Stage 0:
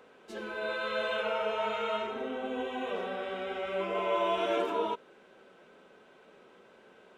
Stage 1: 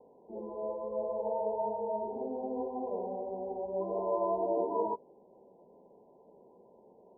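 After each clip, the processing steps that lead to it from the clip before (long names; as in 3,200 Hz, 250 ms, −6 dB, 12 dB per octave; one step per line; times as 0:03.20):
Chebyshev low-pass filter 1,000 Hz, order 10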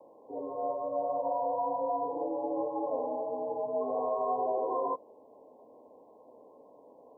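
brickwall limiter −26.5 dBFS, peak gain reduction 7 dB
frequency shifter +64 Hz
level +3.5 dB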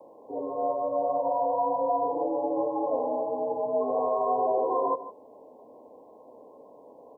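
single-tap delay 154 ms −14 dB
level +5 dB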